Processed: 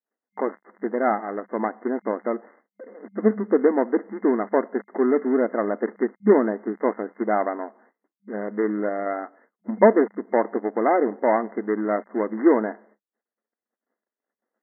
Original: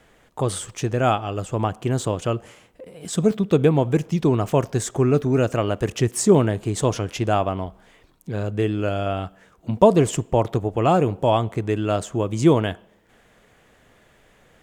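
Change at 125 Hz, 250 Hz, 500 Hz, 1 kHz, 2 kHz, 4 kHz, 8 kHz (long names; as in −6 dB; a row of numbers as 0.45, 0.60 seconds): below −15 dB, −1.0 dB, −0.5 dB, −1.0 dB, +1.0 dB, below −40 dB, below −40 dB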